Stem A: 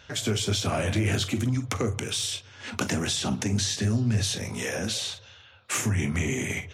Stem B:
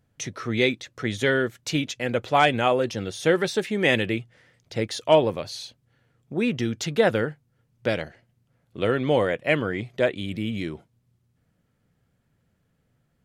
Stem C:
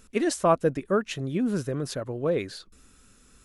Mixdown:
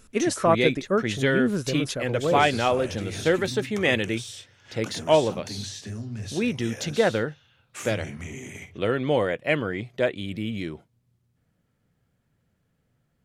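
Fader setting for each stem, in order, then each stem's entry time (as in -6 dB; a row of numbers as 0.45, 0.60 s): -10.0, -1.5, +1.0 dB; 2.05, 0.00, 0.00 s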